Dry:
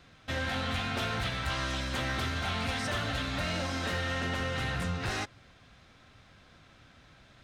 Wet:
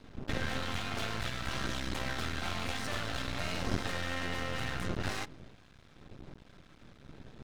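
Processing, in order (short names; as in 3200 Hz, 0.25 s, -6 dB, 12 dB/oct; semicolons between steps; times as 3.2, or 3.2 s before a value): wind noise 230 Hz -40 dBFS; half-wave rectifier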